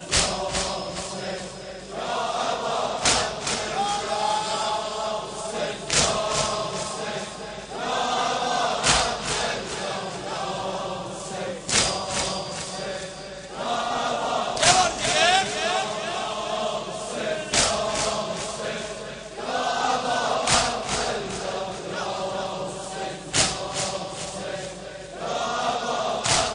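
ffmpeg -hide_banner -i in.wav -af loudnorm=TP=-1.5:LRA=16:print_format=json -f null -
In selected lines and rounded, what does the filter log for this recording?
"input_i" : "-25.0",
"input_tp" : "-3.6",
"input_lra" : "4.5",
"input_thresh" : "-35.2",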